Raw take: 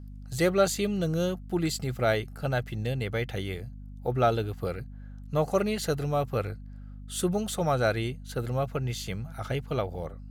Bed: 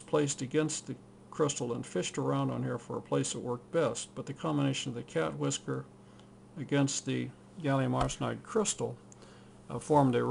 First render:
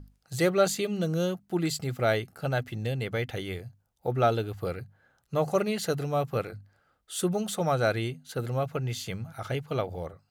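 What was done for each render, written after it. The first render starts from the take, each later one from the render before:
mains-hum notches 50/100/150/200/250 Hz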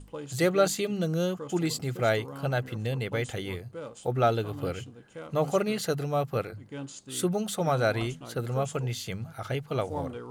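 mix in bed −10.5 dB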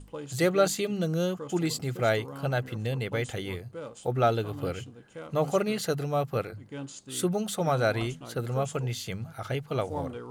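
no processing that can be heard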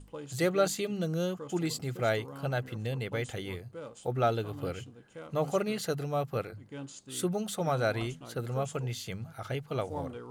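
level −3.5 dB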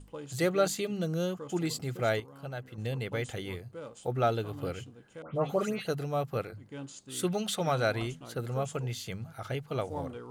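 0:02.20–0:02.78: clip gain −7.5 dB
0:05.22–0:05.87: all-pass dispersion highs, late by 142 ms, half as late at 2,400 Hz
0:07.23–0:07.90: parametric band 3,100 Hz +12 dB → +3 dB 2 octaves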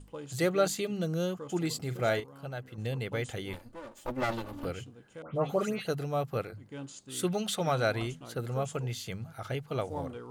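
0:01.82–0:02.24: double-tracking delay 40 ms −11 dB
0:03.53–0:04.65: lower of the sound and its delayed copy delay 3.4 ms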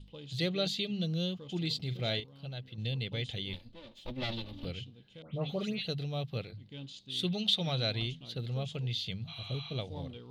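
drawn EQ curve 200 Hz 0 dB, 300 Hz −7 dB, 560 Hz −8 dB, 1,400 Hz −15 dB, 3,700 Hz +11 dB, 7,500 Hz −16 dB
0:09.31–0:09.71: healed spectral selection 680–6,100 Hz after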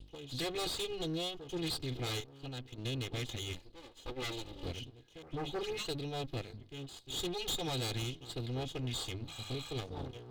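lower of the sound and its delayed copy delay 2.4 ms
hard clipping −32.5 dBFS, distortion −12 dB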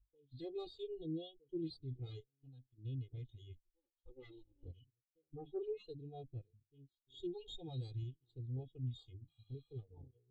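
every bin expanded away from the loudest bin 2.5 to 1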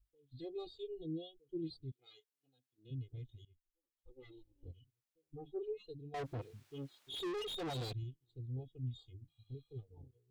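0:01.90–0:02.90: high-pass filter 1,400 Hz → 320 Hz
0:03.45–0:04.31: fade in, from −21 dB
0:06.14–0:07.93: mid-hump overdrive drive 37 dB, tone 3,000 Hz, clips at −33.5 dBFS

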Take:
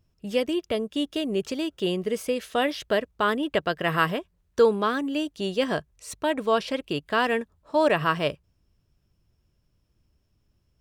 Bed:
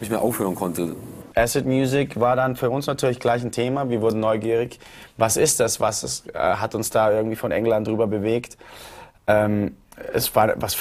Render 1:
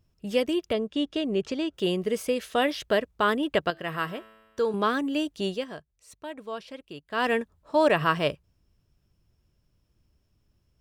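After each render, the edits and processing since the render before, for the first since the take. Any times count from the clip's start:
0:00.73–0:01.74: high-frequency loss of the air 78 metres
0:03.70–0:04.74: tuned comb filter 110 Hz, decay 1.4 s
0:05.48–0:07.27: duck −13 dB, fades 0.17 s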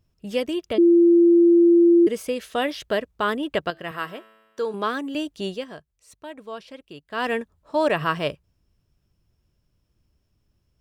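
0:00.78–0:02.07: beep over 342 Hz −11 dBFS
0:03.91–0:05.15: Bessel high-pass filter 230 Hz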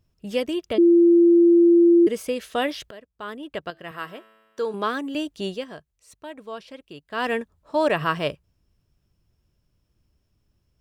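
0:02.91–0:04.65: fade in, from −21.5 dB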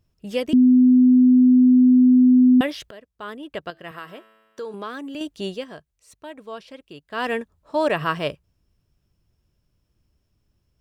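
0:00.53–0:02.61: beep over 252 Hz −10 dBFS
0:03.98–0:05.21: downward compressor 2 to 1, threshold −33 dBFS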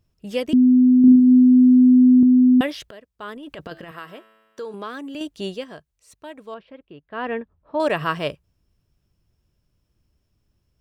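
0:01.00–0:02.23: flutter between parallel walls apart 6.7 metres, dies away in 0.96 s
0:03.36–0:03.90: transient designer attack −10 dB, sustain +11 dB
0:06.54–0:07.80: high-frequency loss of the air 470 metres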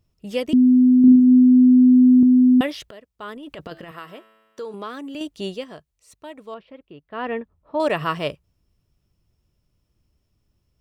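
notch filter 1,600 Hz, Q 14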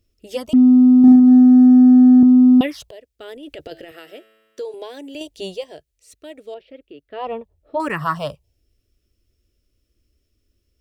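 in parallel at −5 dB: asymmetric clip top −12 dBFS, bottom −11 dBFS
on the sum: phaser swept by the level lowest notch 150 Hz, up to 2,700 Hz, full sweep at −6.5 dBFS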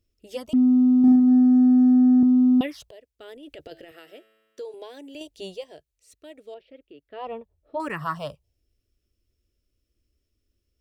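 level −7 dB

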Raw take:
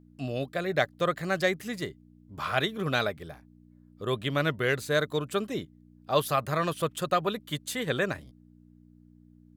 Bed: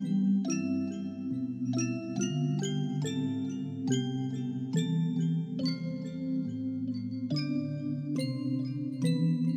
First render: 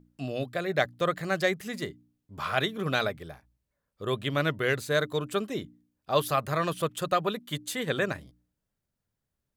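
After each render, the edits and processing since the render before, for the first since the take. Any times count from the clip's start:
hum removal 60 Hz, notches 5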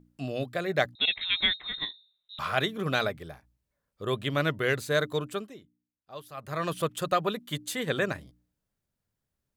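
0:00.95–0:02.39: voice inversion scrambler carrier 3,900 Hz
0:05.17–0:06.75: duck −17.5 dB, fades 0.41 s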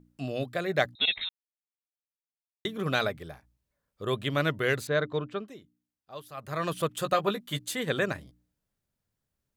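0:01.29–0:02.65: silence
0:04.87–0:05.48: high-frequency loss of the air 220 metres
0:06.98–0:07.71: double-tracking delay 15 ms −6.5 dB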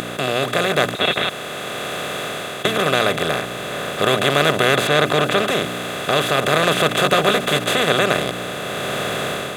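compressor on every frequency bin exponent 0.2
automatic gain control gain up to 7 dB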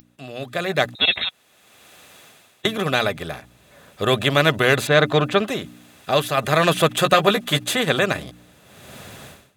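spectral dynamics exaggerated over time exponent 3
automatic gain control gain up to 9 dB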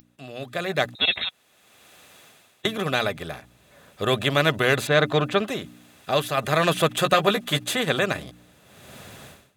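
level −3.5 dB

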